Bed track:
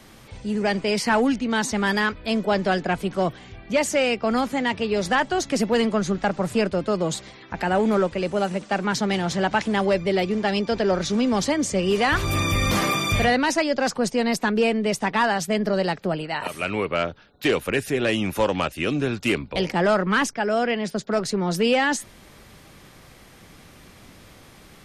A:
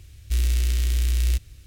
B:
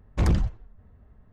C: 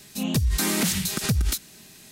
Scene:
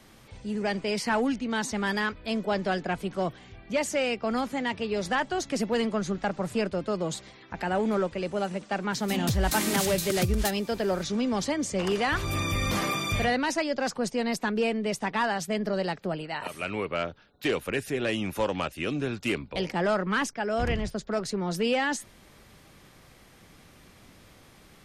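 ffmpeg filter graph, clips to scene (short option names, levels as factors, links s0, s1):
-filter_complex "[2:a]asplit=2[s0][s1];[0:a]volume=0.501[s2];[s0]highpass=560[s3];[3:a]atrim=end=2.11,asetpts=PTS-STARTPTS,volume=0.596,afade=t=in:d=0.004:c=hsin,afade=t=out:st=2.106:d=0.004:c=hsin,adelay=8930[s4];[s3]atrim=end=1.32,asetpts=PTS-STARTPTS,volume=0.75,afade=t=in:d=0.004:c=hsin,afade=t=out:st=1.316:d=0.004:c=hsin,adelay=11610[s5];[s1]atrim=end=1.32,asetpts=PTS-STARTPTS,volume=0.316,afade=t=in:d=0.004:c=hsin,afade=t=out:st=1.316:d=0.004:c=hsin,adelay=20410[s6];[s2][s4][s5][s6]amix=inputs=4:normalize=0"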